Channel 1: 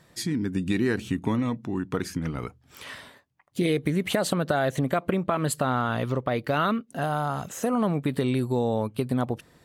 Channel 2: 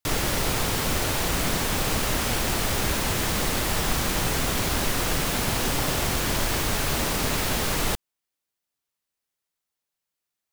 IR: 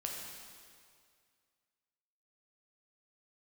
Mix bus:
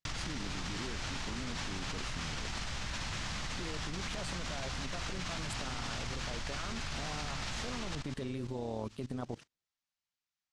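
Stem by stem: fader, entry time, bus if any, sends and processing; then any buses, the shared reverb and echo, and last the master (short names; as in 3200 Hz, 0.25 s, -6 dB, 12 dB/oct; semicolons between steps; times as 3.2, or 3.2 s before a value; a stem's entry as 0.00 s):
-1.0 dB, 0.00 s, no send, LPF 9100 Hz 24 dB/oct; limiter -19.5 dBFS, peak gain reduction 9 dB; AM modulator 150 Hz, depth 45%
-9.5 dB, 0.00 s, send -5 dB, LPF 6600 Hz 24 dB/oct; bell 420 Hz -13 dB 1.3 oct; fast leveller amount 100%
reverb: on, RT60 2.1 s, pre-delay 5 ms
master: gate -44 dBFS, range -34 dB; level quantiser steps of 19 dB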